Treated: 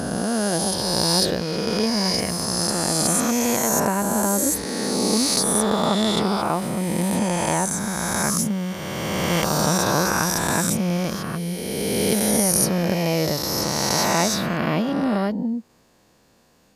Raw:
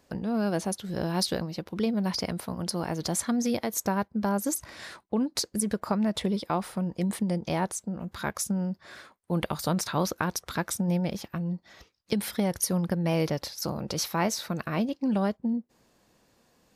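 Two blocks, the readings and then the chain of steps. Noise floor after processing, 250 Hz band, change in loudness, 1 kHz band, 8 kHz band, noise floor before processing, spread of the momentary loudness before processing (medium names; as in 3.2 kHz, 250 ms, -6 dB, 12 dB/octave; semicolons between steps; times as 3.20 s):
-58 dBFS, +6.0 dB, +8.5 dB, +9.0 dB, +12.5 dB, -66 dBFS, 6 LU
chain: reverse spectral sustain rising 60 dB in 2.90 s; trim +2.5 dB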